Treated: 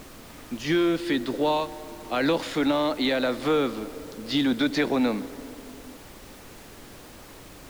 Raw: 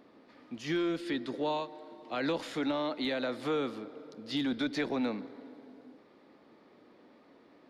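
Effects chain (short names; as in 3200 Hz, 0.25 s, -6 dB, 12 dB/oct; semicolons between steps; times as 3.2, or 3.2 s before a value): added noise pink -55 dBFS; gain +8.5 dB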